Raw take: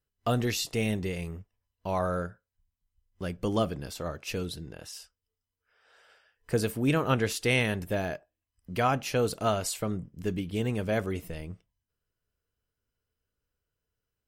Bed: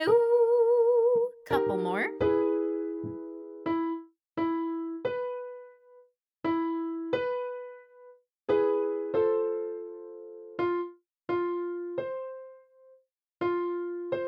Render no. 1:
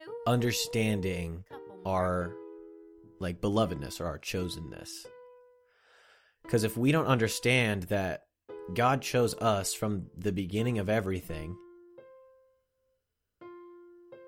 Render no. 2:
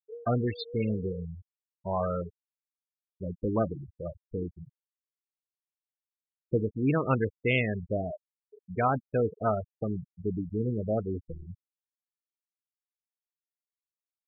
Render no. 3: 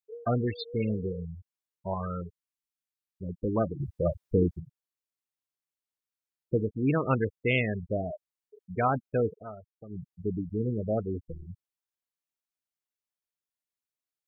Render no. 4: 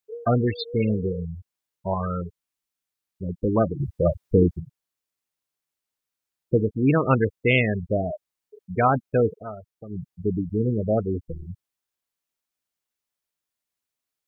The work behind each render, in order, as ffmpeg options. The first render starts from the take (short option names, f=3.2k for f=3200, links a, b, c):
-filter_complex "[1:a]volume=-19.5dB[a];[0:a][a]amix=inputs=2:normalize=0"
-af "afwtdn=0.0178,afftfilt=real='re*gte(hypot(re,im),0.0708)':imag='im*gte(hypot(re,im),0.0708)':win_size=1024:overlap=0.75"
-filter_complex "[0:a]asettb=1/sr,asplit=3[a][b][c];[a]atrim=end=1.944[d];[b]atrim=start=1.94:end=3.29,asetpts=PTS-STARTPTS,afade=t=in:d=0.004:c=qsin,afade=t=out:st=1.346:d=0.004:c=qsin,equalizer=f=630:w=1.8:g=-13[e];[c]atrim=start=3.286[f];[d][e]acrossfade=d=0.004:c1=hsin:c2=qsin[g];[g][f]acrossfade=d=0.004:c1=qsin:c2=hsin,asplit=5[h][i][j][k][l];[h]atrim=end=3.802[m];[i]atrim=start=3.798:end=4.602,asetpts=PTS-STARTPTS,volume=10dB[n];[j]atrim=start=4.598:end=9.44,asetpts=PTS-STARTPTS,afade=t=out:st=4.712:d=0.13:silence=0.177828[o];[k]atrim=start=9.44:end=9.89,asetpts=PTS-STARTPTS,volume=-15dB[p];[l]atrim=start=9.89,asetpts=PTS-STARTPTS,afade=t=in:d=0.13:silence=0.177828[q];[m][n]acrossfade=d=0.004:c1=hsin:c2=hsin[r];[o][p][q]concat=n=3:v=0:a=1[s];[r][s]acrossfade=d=0.004:c1=hsin:c2=hsin"
-af "volume=6.5dB"